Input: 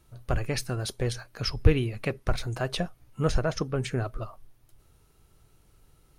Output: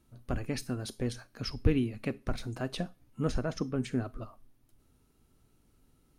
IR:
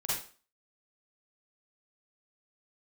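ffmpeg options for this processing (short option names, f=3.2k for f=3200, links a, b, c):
-filter_complex "[0:a]equalizer=f=250:t=o:w=0.61:g=13,asplit=2[a][b];[1:a]atrim=start_sample=2205,asetrate=57330,aresample=44100,highshelf=f=3.6k:g=10.5[c];[b][c]afir=irnorm=-1:irlink=0,volume=-25dB[d];[a][d]amix=inputs=2:normalize=0,volume=-8dB"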